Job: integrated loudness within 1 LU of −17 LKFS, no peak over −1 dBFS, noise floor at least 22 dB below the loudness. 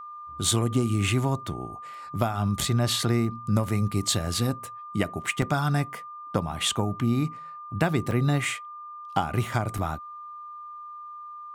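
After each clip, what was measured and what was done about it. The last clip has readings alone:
number of dropouts 3; longest dropout 2.4 ms; interfering tone 1,200 Hz; level of the tone −38 dBFS; integrated loudness −27.0 LKFS; sample peak −9.5 dBFS; target loudness −17.0 LKFS
→ repair the gap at 0:05.42/0:08.11/0:09.78, 2.4 ms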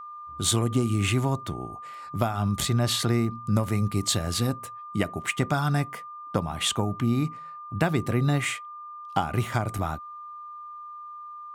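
number of dropouts 0; interfering tone 1,200 Hz; level of the tone −38 dBFS
→ notch filter 1,200 Hz, Q 30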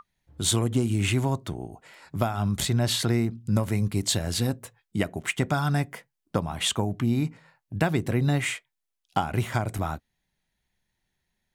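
interfering tone none found; integrated loudness −27.0 LKFS; sample peak −9.5 dBFS; target loudness −17.0 LKFS
→ level +10 dB
brickwall limiter −1 dBFS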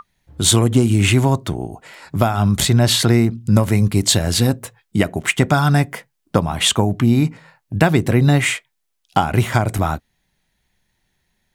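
integrated loudness −17.0 LKFS; sample peak −1.0 dBFS; background noise floor −72 dBFS

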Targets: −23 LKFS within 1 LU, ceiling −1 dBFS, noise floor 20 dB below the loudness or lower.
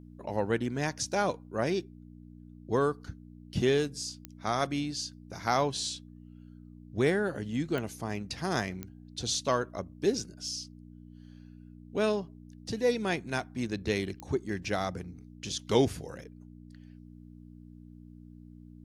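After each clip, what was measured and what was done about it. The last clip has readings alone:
number of clicks 4; mains hum 60 Hz; hum harmonics up to 300 Hz; level of the hum −47 dBFS; integrated loudness −32.0 LKFS; sample peak −10.5 dBFS; target loudness −23.0 LKFS
→ click removal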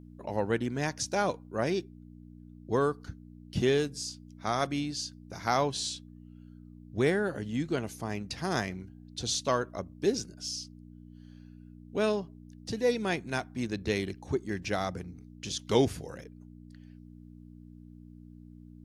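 number of clicks 0; mains hum 60 Hz; hum harmonics up to 300 Hz; level of the hum −47 dBFS
→ hum removal 60 Hz, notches 5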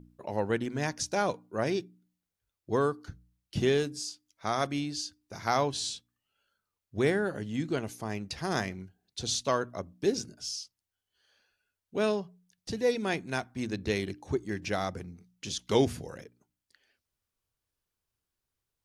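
mains hum none found; integrated loudness −32.0 LKFS; sample peak −10.5 dBFS; target loudness −23.0 LKFS
→ level +9 dB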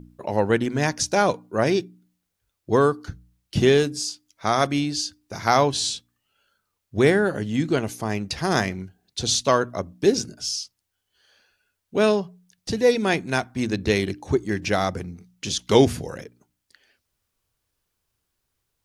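integrated loudness −23.0 LKFS; sample peak −1.5 dBFS; background noise floor −79 dBFS

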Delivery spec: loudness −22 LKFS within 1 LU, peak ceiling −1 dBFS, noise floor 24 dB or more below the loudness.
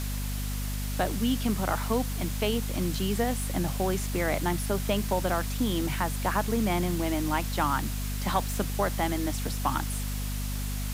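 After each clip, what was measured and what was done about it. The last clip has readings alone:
mains hum 50 Hz; hum harmonics up to 250 Hz; level of the hum −29 dBFS; background noise floor −32 dBFS; target noise floor −53 dBFS; integrated loudness −29.0 LKFS; sample peak −12.0 dBFS; target loudness −22.0 LKFS
→ hum removal 50 Hz, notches 5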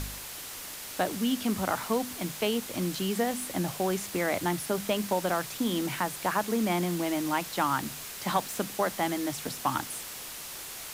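mains hum none found; background noise floor −41 dBFS; target noise floor −55 dBFS
→ broadband denoise 14 dB, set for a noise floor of −41 dBFS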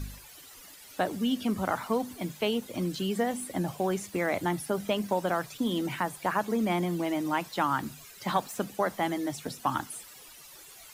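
background noise floor −50 dBFS; target noise floor −55 dBFS
→ broadband denoise 6 dB, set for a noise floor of −50 dBFS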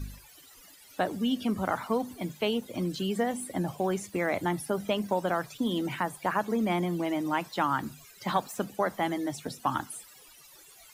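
background noise floor −54 dBFS; target noise floor −55 dBFS
→ broadband denoise 6 dB, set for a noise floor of −54 dBFS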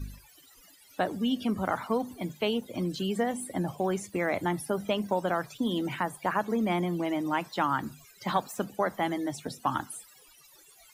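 background noise floor −57 dBFS; integrated loudness −30.5 LKFS; sample peak −13.0 dBFS; target loudness −22.0 LKFS
→ level +8.5 dB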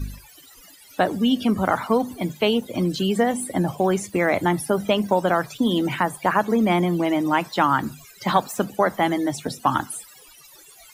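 integrated loudness −22.0 LKFS; sample peak −4.5 dBFS; background noise floor −49 dBFS

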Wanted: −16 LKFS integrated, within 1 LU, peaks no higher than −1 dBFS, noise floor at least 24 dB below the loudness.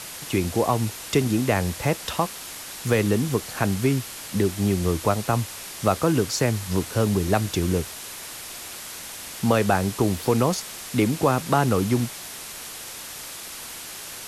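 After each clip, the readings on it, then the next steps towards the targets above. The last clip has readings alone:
background noise floor −38 dBFS; target noise floor −49 dBFS; integrated loudness −25.0 LKFS; sample peak −7.5 dBFS; target loudness −16.0 LKFS
→ noise reduction from a noise print 11 dB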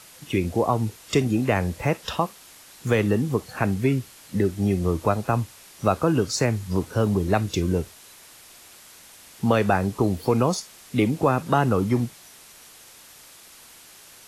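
background noise floor −49 dBFS; integrated loudness −24.0 LKFS; sample peak −7.5 dBFS; target loudness −16.0 LKFS
→ level +8 dB
brickwall limiter −1 dBFS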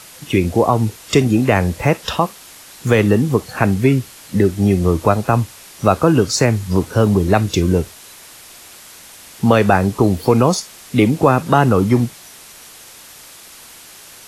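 integrated loudness −16.0 LKFS; sample peak −1.0 dBFS; background noise floor −41 dBFS

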